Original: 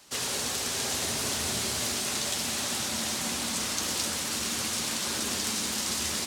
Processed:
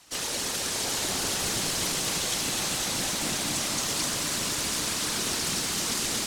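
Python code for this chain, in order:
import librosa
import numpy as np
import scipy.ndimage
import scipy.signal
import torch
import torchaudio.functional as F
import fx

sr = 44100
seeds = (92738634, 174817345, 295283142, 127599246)

y = fx.whisperise(x, sr, seeds[0])
y = fx.echo_crushed(y, sr, ms=252, feedback_pct=80, bits=9, wet_db=-6.5)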